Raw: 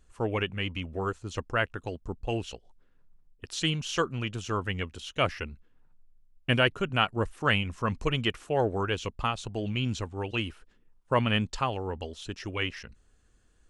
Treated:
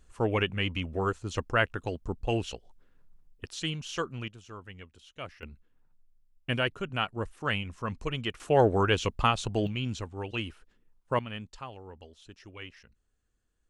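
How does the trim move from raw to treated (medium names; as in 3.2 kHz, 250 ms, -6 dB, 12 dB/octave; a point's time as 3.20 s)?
+2 dB
from 3.48 s -5 dB
from 4.28 s -14.5 dB
from 5.43 s -5 dB
from 8.40 s +4.5 dB
from 9.67 s -3 dB
from 11.19 s -13 dB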